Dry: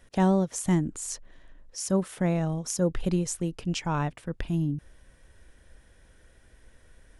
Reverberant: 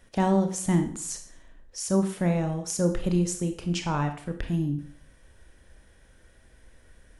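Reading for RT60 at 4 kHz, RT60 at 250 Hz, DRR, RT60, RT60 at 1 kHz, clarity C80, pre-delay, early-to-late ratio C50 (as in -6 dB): 0.50 s, 0.50 s, 6.0 dB, 0.50 s, 0.50 s, 13.0 dB, 25 ms, 9.5 dB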